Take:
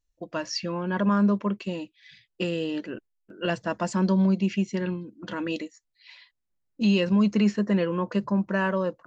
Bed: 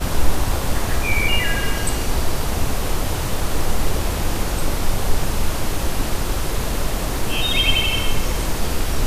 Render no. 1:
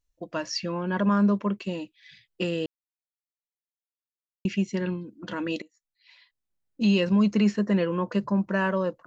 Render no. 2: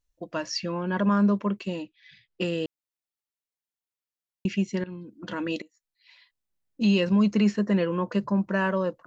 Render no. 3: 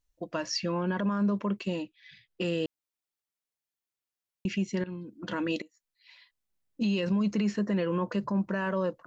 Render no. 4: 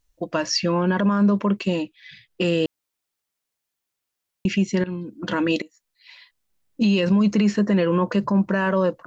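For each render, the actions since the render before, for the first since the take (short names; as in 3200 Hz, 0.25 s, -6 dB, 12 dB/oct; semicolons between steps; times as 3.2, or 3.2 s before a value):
2.66–4.45 mute; 5.62–6.81 fade in, from -20 dB
1.82–2.41 air absorption 110 m; 4.84–5.27 fade in equal-power, from -18 dB
limiter -20.5 dBFS, peak gain reduction 8 dB
gain +9 dB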